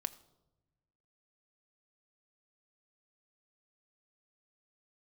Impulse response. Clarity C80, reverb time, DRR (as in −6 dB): 19.0 dB, 1.0 s, 10.0 dB